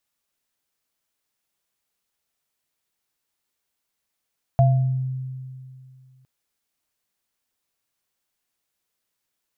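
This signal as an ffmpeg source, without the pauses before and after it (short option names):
-f lavfi -i "aevalsrc='0.251*pow(10,-3*t/2.41)*sin(2*PI*130*t)+0.158*pow(10,-3*t/0.51)*sin(2*PI*684*t)':d=1.66:s=44100"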